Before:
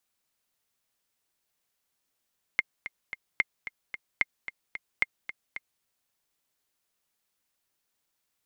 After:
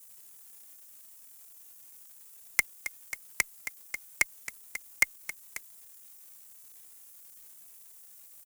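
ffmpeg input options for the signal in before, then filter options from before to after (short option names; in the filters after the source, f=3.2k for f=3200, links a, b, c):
-f lavfi -i "aevalsrc='pow(10,(-9.5-13*gte(mod(t,3*60/222),60/222))/20)*sin(2*PI*2120*mod(t,60/222))*exp(-6.91*mod(t,60/222)/0.03)':d=3.24:s=44100"
-filter_complex "[0:a]aexciter=amount=15.2:drive=8.5:freq=5.6k,asplit=2[a][b];[b]acrusher=bits=6:mix=0:aa=0.000001,volume=-4dB[c];[a][c]amix=inputs=2:normalize=0,asplit=2[d][e];[e]adelay=2.7,afreqshift=0.93[f];[d][f]amix=inputs=2:normalize=1"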